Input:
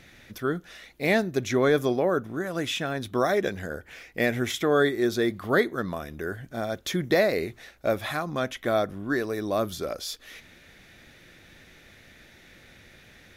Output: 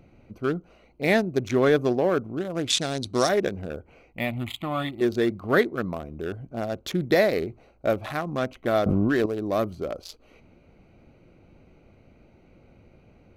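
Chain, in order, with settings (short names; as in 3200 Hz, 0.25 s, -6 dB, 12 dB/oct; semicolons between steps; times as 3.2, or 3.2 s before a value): Wiener smoothing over 25 samples; 2.7–3.29 band shelf 6100 Hz +16 dB; 4.13–5.01 fixed phaser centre 1600 Hz, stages 6; 8.86–9.26 fast leveller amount 100%; gain +2 dB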